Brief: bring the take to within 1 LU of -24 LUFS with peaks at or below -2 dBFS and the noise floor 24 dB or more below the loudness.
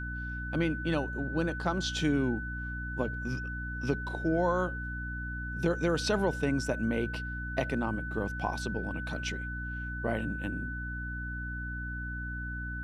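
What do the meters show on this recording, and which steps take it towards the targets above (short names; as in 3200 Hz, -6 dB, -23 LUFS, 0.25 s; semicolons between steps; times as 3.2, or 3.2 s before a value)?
hum 60 Hz; harmonics up to 300 Hz; hum level -36 dBFS; steady tone 1500 Hz; tone level -38 dBFS; loudness -33.0 LUFS; peak -15.5 dBFS; loudness target -24.0 LUFS
-> de-hum 60 Hz, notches 5; notch 1500 Hz, Q 30; gain +9 dB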